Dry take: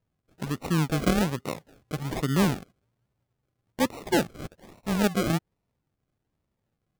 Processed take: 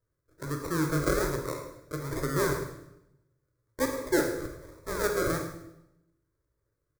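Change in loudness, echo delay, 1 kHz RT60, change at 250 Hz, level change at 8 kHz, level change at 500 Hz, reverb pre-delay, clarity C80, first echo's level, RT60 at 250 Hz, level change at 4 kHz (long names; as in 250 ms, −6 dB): −3.0 dB, 106 ms, 0.80 s, −6.0 dB, +0.5 dB, +1.0 dB, 17 ms, 7.5 dB, −13.0 dB, 1.0 s, −6.5 dB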